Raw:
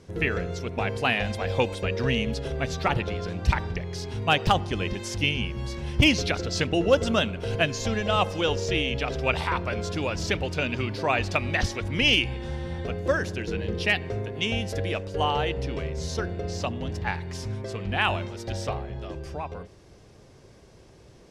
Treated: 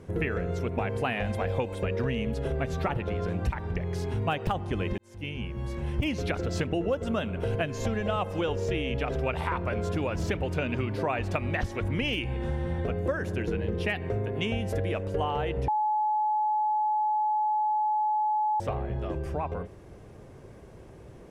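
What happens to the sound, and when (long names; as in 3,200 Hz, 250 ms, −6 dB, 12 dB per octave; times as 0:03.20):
0:04.98–0:06.23: fade in linear
0:15.68–0:18.60: beep over 853 Hz −19 dBFS
whole clip: parametric band 4,900 Hz −14 dB 1.5 octaves; downward compressor, threshold −30 dBFS; level +4.5 dB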